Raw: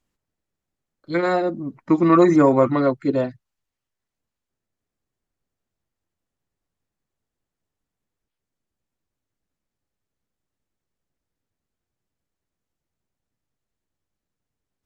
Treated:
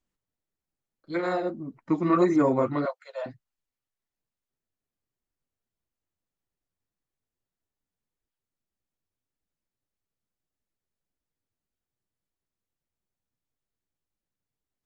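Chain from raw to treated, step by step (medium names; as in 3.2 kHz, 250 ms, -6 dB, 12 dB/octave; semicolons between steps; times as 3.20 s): 2.85–3.26 s: steep high-pass 550 Hz 72 dB/octave; flange 1.7 Hz, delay 2.2 ms, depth 9 ms, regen -40%; trim -3.5 dB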